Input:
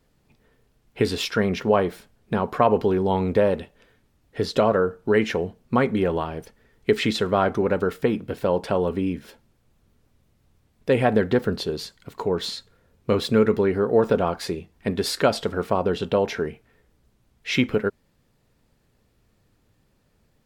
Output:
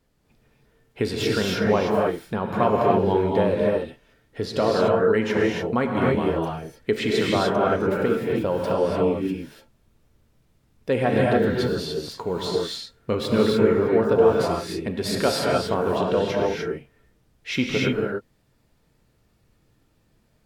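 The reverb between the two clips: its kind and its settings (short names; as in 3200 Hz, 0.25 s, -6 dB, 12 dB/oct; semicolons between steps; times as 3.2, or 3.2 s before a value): non-linear reverb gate 0.32 s rising, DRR -2.5 dB; gain -3.5 dB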